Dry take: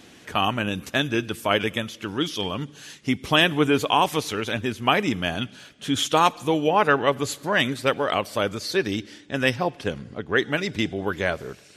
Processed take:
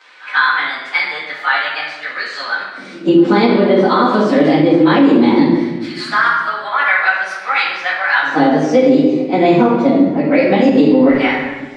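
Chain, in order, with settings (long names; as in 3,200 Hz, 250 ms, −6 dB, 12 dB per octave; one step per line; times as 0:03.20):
phase-vocoder pitch shift without resampling +5 semitones
high-shelf EQ 2,000 Hz −10.5 dB
downward compressor, threshold −26 dBFS, peak gain reduction 9.5 dB
auto-filter high-pass square 0.18 Hz 260–1,500 Hz
high-frequency loss of the air 130 metres
echo ahead of the sound 137 ms −23 dB
rectangular room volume 750 cubic metres, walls mixed, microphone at 2 metres
boost into a limiter +15.5 dB
level −1 dB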